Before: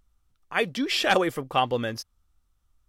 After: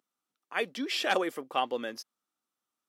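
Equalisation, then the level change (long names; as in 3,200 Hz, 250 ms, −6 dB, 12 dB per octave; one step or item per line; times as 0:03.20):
high-pass filter 230 Hz 24 dB per octave
−6.0 dB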